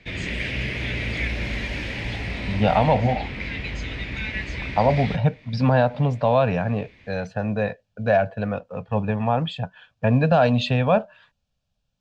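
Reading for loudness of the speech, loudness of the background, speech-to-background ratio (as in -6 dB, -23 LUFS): -22.5 LUFS, -29.0 LUFS, 6.5 dB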